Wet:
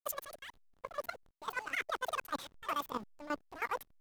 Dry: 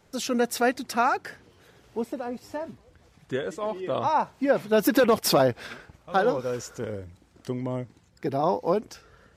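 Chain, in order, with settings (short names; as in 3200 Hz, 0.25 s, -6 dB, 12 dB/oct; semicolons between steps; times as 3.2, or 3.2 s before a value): bin magnitudes rounded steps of 15 dB; high shelf 2700 Hz +6.5 dB; reverse; compressor 12:1, threshold -31 dBFS, peak gain reduction 16.5 dB; reverse; random-step tremolo, depth 80%; level quantiser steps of 12 dB; backlash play -45 dBFS; speed mistake 33 rpm record played at 78 rpm; gain +3 dB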